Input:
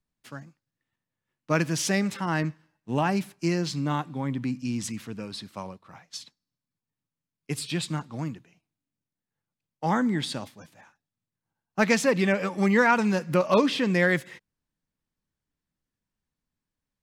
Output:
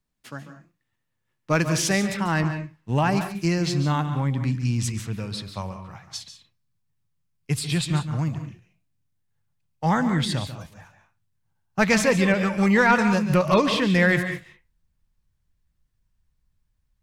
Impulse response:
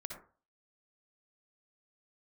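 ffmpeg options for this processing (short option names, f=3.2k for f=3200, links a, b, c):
-filter_complex "[0:a]asubboost=boost=8:cutoff=93,acontrast=88,asplit=2[a][b];[1:a]atrim=start_sample=2205,asetrate=79380,aresample=44100,adelay=142[c];[b][c]afir=irnorm=-1:irlink=0,volume=-1.5dB[d];[a][d]amix=inputs=2:normalize=0,volume=-3.5dB"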